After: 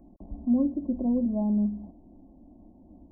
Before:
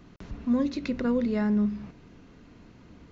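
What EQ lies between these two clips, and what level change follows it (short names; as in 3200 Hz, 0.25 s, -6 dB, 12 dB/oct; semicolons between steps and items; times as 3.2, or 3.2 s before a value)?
brick-wall FIR low-pass 1100 Hz; fixed phaser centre 670 Hz, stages 8; +2.0 dB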